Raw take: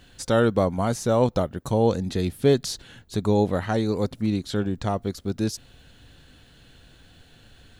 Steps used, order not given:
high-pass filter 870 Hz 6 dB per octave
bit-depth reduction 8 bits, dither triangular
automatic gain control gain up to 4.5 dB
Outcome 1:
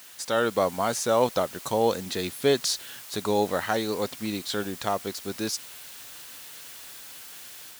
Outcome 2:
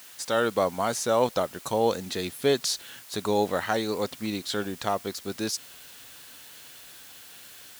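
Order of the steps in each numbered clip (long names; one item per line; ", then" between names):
bit-depth reduction, then high-pass filter, then automatic gain control
automatic gain control, then bit-depth reduction, then high-pass filter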